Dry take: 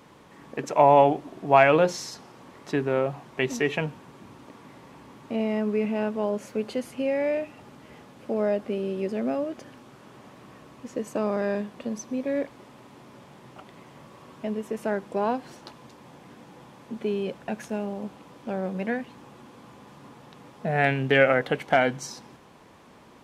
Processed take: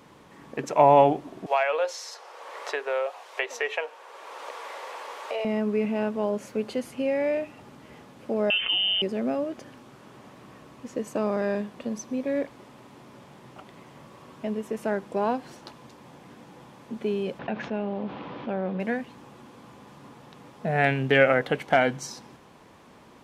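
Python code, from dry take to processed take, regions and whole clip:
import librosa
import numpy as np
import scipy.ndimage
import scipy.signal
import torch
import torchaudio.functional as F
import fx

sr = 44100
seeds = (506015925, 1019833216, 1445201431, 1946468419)

y = fx.chain(x, sr, fx.ellip_highpass(hz=480.0, order=4, stop_db=80),
    fx.high_shelf(hz=8300.0, db=-6.0),
    fx.band_squash(depth_pct=70), at=(1.46, 5.45))
y = fx.chain(y, sr, fx.freq_invert(carrier_hz=3300),
    fx.env_flatten(amount_pct=70), at=(8.5, 9.02))
y = fx.chain(y, sr, fx.lowpass(hz=3700.0, slope=24),
    fx.low_shelf(hz=71.0, db=-9.5),
    fx.env_flatten(amount_pct=50), at=(17.39, 18.8))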